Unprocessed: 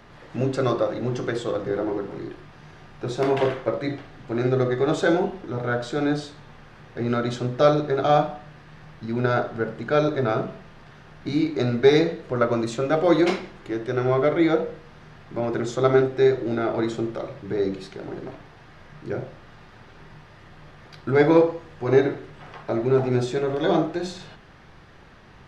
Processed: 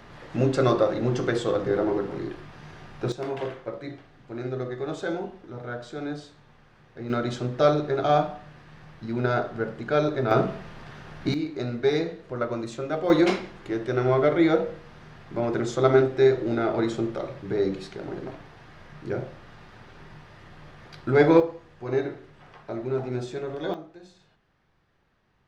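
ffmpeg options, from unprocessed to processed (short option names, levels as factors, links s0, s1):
-af "asetnsamples=n=441:p=0,asendcmd='3.12 volume volume -9.5dB;7.1 volume volume -2.5dB;10.31 volume volume 4dB;11.34 volume volume -7dB;13.1 volume volume -0.5dB;21.4 volume volume -8dB;23.74 volume volume -19.5dB',volume=1.19"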